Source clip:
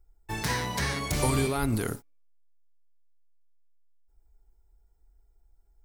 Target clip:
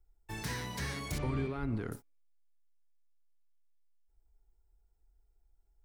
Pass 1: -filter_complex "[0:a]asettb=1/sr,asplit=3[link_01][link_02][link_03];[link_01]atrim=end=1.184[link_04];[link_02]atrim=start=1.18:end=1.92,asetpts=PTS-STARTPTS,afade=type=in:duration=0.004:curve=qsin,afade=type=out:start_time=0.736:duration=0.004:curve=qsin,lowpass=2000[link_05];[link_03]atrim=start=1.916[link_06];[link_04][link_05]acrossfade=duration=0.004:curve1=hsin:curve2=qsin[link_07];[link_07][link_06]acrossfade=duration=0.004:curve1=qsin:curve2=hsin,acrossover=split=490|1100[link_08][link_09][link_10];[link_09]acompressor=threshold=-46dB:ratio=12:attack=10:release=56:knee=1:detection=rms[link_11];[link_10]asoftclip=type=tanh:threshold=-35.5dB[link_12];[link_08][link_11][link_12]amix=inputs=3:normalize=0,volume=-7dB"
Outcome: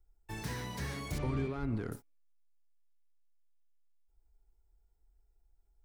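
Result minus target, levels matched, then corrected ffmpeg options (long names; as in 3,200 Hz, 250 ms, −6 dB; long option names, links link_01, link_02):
soft clipping: distortion +7 dB
-filter_complex "[0:a]asettb=1/sr,asplit=3[link_01][link_02][link_03];[link_01]atrim=end=1.184[link_04];[link_02]atrim=start=1.18:end=1.92,asetpts=PTS-STARTPTS,afade=type=in:duration=0.004:curve=qsin,afade=type=out:start_time=0.736:duration=0.004:curve=qsin,lowpass=2000[link_05];[link_03]atrim=start=1.916[link_06];[link_04][link_05]acrossfade=duration=0.004:curve1=hsin:curve2=qsin[link_07];[link_07][link_06]acrossfade=duration=0.004:curve1=qsin:curve2=hsin,acrossover=split=490|1100[link_08][link_09][link_10];[link_09]acompressor=threshold=-46dB:ratio=12:attack=10:release=56:knee=1:detection=rms[link_11];[link_10]asoftclip=type=tanh:threshold=-27dB[link_12];[link_08][link_11][link_12]amix=inputs=3:normalize=0,volume=-7dB"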